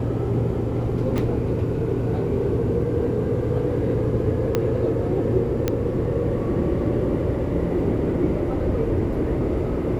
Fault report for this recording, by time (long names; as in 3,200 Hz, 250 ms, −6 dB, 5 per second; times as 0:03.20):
0:01.18: click
0:04.55: click −8 dBFS
0:05.68: click −8 dBFS